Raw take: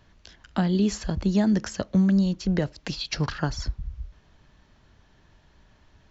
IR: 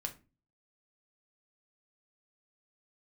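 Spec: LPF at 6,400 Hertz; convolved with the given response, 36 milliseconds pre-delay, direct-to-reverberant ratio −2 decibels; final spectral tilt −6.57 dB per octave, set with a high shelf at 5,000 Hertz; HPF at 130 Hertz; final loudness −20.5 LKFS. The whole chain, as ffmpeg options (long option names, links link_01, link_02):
-filter_complex "[0:a]highpass=130,lowpass=6400,highshelf=frequency=5000:gain=-4.5,asplit=2[link_01][link_02];[1:a]atrim=start_sample=2205,adelay=36[link_03];[link_02][link_03]afir=irnorm=-1:irlink=0,volume=2.5dB[link_04];[link_01][link_04]amix=inputs=2:normalize=0,volume=2dB"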